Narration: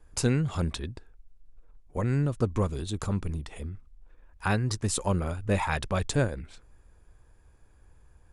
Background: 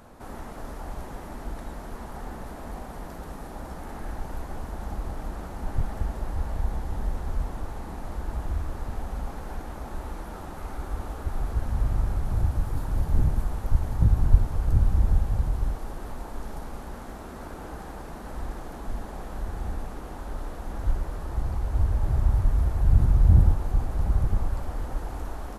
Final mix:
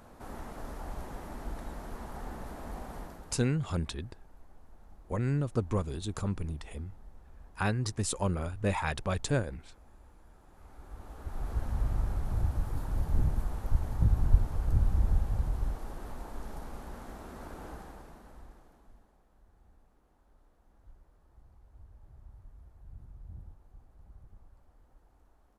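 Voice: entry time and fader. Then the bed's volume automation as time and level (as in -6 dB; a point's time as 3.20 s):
3.15 s, -3.5 dB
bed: 2.99 s -4 dB
3.70 s -24 dB
10.36 s -24 dB
11.54 s -5.5 dB
17.70 s -5.5 dB
19.23 s -30.5 dB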